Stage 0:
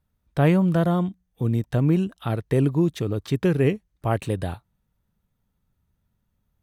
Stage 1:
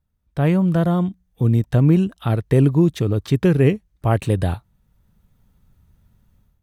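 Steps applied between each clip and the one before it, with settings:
low-shelf EQ 150 Hz +6 dB
automatic gain control gain up to 15 dB
level −4 dB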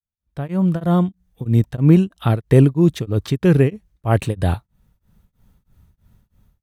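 fade in at the beginning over 0.85 s
tremolo along a rectified sine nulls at 3.1 Hz
level +4 dB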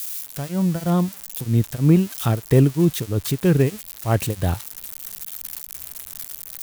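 spike at every zero crossing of −17.5 dBFS
level −3 dB

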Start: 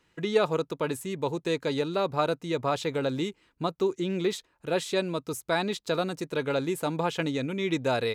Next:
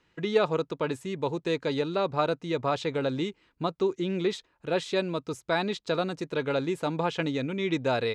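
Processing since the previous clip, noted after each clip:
low-pass filter 5,600 Hz 12 dB per octave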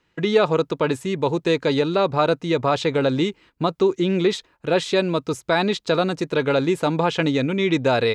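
noise gate −56 dBFS, range −8 dB
in parallel at 0 dB: brickwall limiter −20 dBFS, peak gain reduction 9 dB
on the sum: level +3 dB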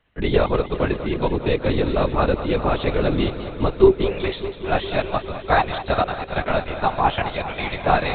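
high-pass filter sweep 85 Hz → 760 Hz, 0:03.24–0:04.23
linear-prediction vocoder at 8 kHz whisper
feedback echo with a swinging delay time 201 ms, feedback 79%, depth 68 cents, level −13 dB
level −1 dB

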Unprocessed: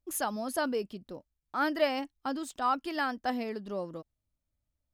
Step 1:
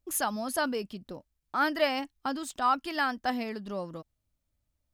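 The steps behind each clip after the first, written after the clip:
dynamic equaliser 410 Hz, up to −6 dB, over −45 dBFS, Q 0.99
level +4 dB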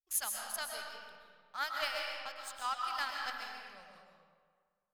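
guitar amp tone stack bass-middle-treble 10-0-10
power curve on the samples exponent 1.4
comb and all-pass reverb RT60 1.8 s, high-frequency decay 0.65×, pre-delay 90 ms, DRR 0 dB
level +1 dB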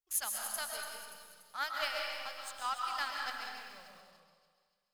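delay with a high-pass on its return 289 ms, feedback 45%, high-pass 4,600 Hz, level −9 dB
feedback echo at a low word length 192 ms, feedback 35%, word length 9 bits, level −11 dB

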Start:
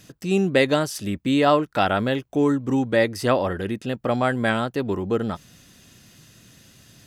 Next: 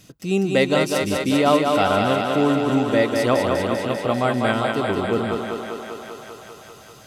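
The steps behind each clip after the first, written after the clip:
notch filter 1,700 Hz, Q 7
on a send: feedback echo with a high-pass in the loop 197 ms, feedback 79%, high-pass 200 Hz, level −3.5 dB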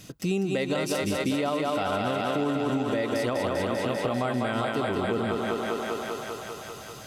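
brickwall limiter −13 dBFS, peak gain reduction 8.5 dB
downward compressor, threshold −27 dBFS, peak gain reduction 9.5 dB
level +3 dB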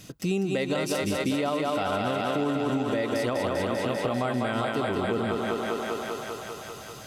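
no processing that can be heard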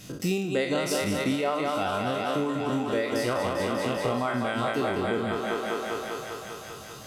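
peak hold with a decay on every bin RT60 1.39 s
reverb reduction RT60 1 s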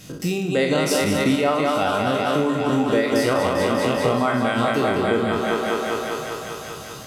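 on a send at −10 dB: convolution reverb RT60 1.4 s, pre-delay 3 ms
on the sum: automatic gain control gain up to 4 dB
level +2.5 dB

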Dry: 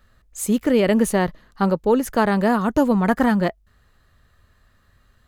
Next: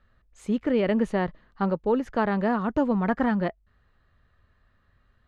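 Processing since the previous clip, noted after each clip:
low-pass filter 3,100 Hz 12 dB per octave
level −6 dB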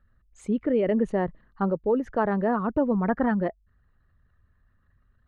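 spectral envelope exaggerated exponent 1.5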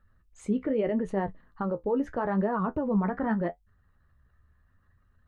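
parametric band 960 Hz +2.5 dB
brickwall limiter −20 dBFS, peak gain reduction 9 dB
flanger 0.81 Hz, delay 9.7 ms, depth 6.1 ms, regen +46%
level +4 dB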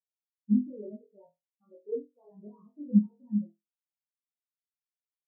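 high-pass filter 79 Hz 6 dB per octave
flutter between parallel walls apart 4.1 metres, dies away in 0.76 s
every bin expanded away from the loudest bin 4 to 1

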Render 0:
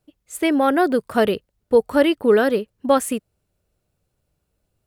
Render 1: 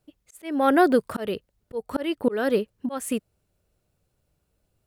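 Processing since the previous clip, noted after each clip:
volume swells 315 ms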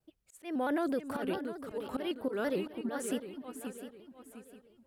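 brickwall limiter −16.5 dBFS, peak gain reduction 8.5 dB
on a send: feedback echo with a long and a short gap by turns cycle 707 ms, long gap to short 3 to 1, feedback 35%, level −8 dB
on the sum: pitch modulation by a square or saw wave square 4.5 Hz, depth 100 cents
level −8 dB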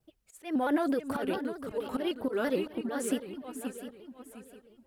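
phase shifter 1.8 Hz, delay 4.8 ms, feedback 39%
level +2.5 dB

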